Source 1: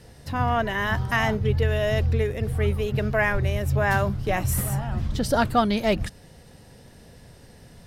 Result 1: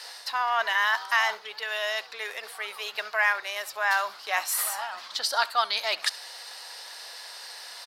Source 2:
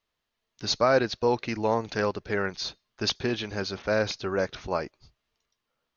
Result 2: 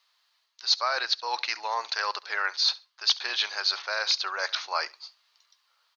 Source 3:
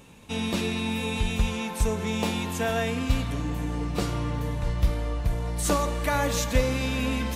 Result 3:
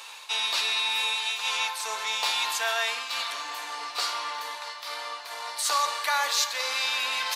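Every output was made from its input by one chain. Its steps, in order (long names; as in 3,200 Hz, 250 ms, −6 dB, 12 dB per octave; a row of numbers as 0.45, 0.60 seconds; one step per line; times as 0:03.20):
parametric band 4,400 Hz +11 dB 0.66 octaves
reversed playback
downward compressor 4 to 1, threshold −32 dBFS
reversed playback
four-pole ladder high-pass 790 Hz, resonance 30%
repeating echo 68 ms, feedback 17%, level −21 dB
loudness normalisation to −27 LKFS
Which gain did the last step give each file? +17.0, +15.5, +17.0 decibels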